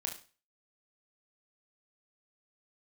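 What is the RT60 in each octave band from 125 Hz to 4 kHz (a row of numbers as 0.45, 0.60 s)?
0.40, 0.35, 0.35, 0.35, 0.35, 0.35 s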